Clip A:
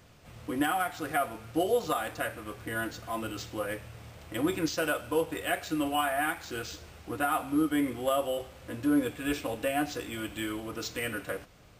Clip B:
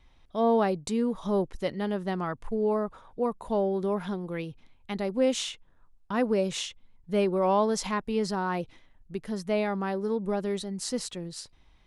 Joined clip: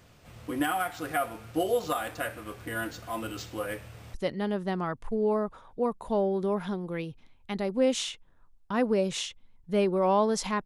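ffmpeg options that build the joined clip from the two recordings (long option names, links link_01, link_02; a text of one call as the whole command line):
ffmpeg -i cue0.wav -i cue1.wav -filter_complex "[0:a]apad=whole_dur=10.65,atrim=end=10.65,atrim=end=4.142[link_01];[1:a]atrim=start=1.538:end=8.05[link_02];[link_01][link_02]acrossfade=duration=0.004:curve1=hsin:curve2=hsin" out.wav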